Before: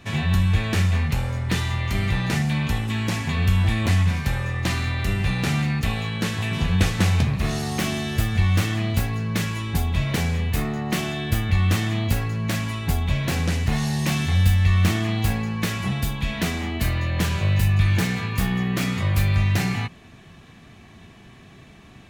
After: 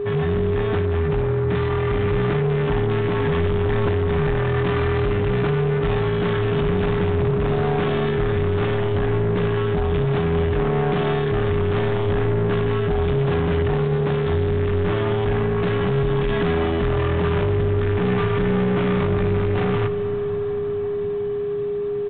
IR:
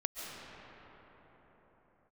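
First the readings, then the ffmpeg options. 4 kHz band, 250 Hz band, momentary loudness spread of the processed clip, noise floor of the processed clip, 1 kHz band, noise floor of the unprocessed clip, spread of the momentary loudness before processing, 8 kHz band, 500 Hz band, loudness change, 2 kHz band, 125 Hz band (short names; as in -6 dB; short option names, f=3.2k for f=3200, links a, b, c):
-5.5 dB, +1.5 dB, 1 LU, -24 dBFS, +4.5 dB, -47 dBFS, 5 LU, under -40 dB, +16.0 dB, +1.5 dB, -1.5 dB, -0.5 dB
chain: -filter_complex "[0:a]highshelf=f=1.7k:t=q:w=1.5:g=-7.5,aecho=1:1:6.7:0.4,dynaudnorm=f=530:g=9:m=11.5dB,alimiter=limit=-11.5dB:level=0:latency=1:release=28,asoftclip=type=tanh:threshold=-27dB,aeval=exprs='val(0)+0.0355*sin(2*PI*410*n/s)':c=same,asplit=2[a][b];[1:a]atrim=start_sample=2205,adelay=59[c];[b][c]afir=irnorm=-1:irlink=0,volume=-14dB[d];[a][d]amix=inputs=2:normalize=0,volume=6.5dB" -ar 8000 -c:a pcm_mulaw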